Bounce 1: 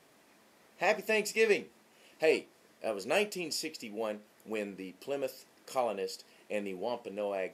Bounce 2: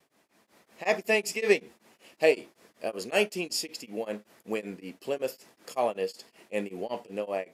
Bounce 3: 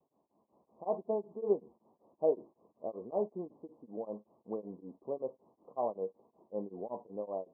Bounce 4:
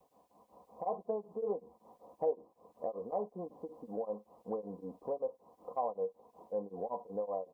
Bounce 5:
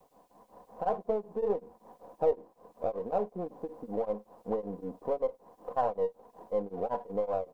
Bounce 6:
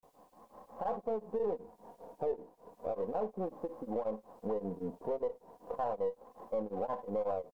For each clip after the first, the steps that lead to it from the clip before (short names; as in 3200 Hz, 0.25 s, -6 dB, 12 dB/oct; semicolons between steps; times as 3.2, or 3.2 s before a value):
gate with hold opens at -56 dBFS; AGC gain up to 10 dB; beating tremolo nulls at 5.3 Hz; gain -3.5 dB
steep low-pass 1100 Hz 96 dB/oct; gain -6.5 dB
bell 260 Hz -12.5 dB 1.1 oct; comb 4 ms, depth 61%; compressor 2:1, threshold -53 dBFS, peak gain reduction 15 dB; gain +12 dB
half-wave gain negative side -3 dB; gain +7 dB
limiter -25.5 dBFS, peak gain reduction 9 dB; vibrato 0.34 Hz 92 cents